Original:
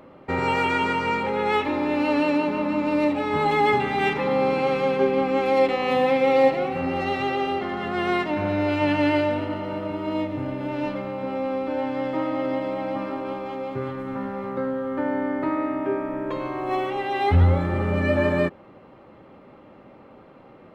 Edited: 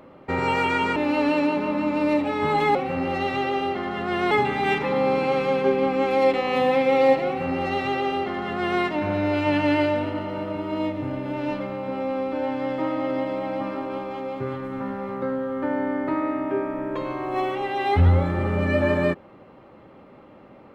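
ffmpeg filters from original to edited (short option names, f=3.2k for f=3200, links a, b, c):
-filter_complex "[0:a]asplit=4[a][b][c][d];[a]atrim=end=0.962[e];[b]atrim=start=1.868:end=3.662[f];[c]atrim=start=6.608:end=8.172[g];[d]atrim=start=3.658[h];[e][f]acrossfade=d=0.004:c1=hsin:c2=hsin[i];[i][g]acrossfade=d=0.004:c1=hsin:c2=hsin[j];[j][h]acrossfade=d=0.004:c1=hsin:c2=hsin"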